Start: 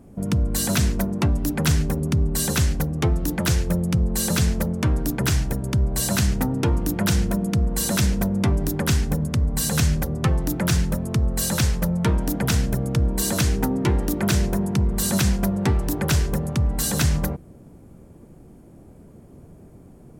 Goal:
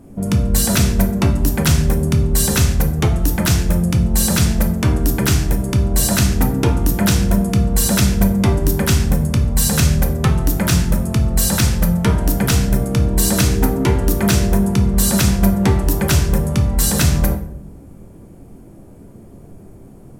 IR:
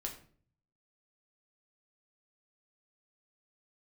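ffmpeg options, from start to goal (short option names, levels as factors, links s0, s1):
-filter_complex "[0:a]asplit=2[s0][s1];[1:a]atrim=start_sample=2205,asetrate=30429,aresample=44100,highshelf=f=8100:g=5[s2];[s1][s2]afir=irnorm=-1:irlink=0,volume=1.41[s3];[s0][s3]amix=inputs=2:normalize=0,volume=0.75"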